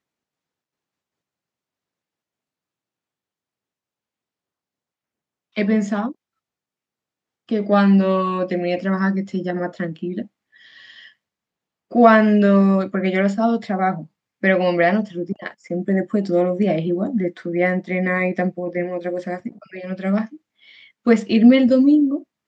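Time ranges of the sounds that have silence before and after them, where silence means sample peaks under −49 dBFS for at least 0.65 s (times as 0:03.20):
0:05.55–0:06.13
0:07.49–0:11.12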